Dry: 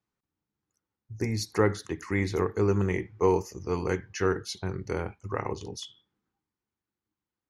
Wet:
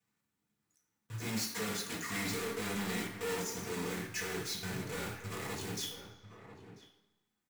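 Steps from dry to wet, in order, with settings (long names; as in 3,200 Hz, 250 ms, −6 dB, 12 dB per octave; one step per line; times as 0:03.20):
one scale factor per block 3 bits
0:01.25–0:03.67: comb filter 4.3 ms, depth 55%
soft clipping −37.5 dBFS, distortion −2 dB
slap from a distant wall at 170 metres, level −11 dB
convolution reverb RT60 1.0 s, pre-delay 3 ms, DRR −4 dB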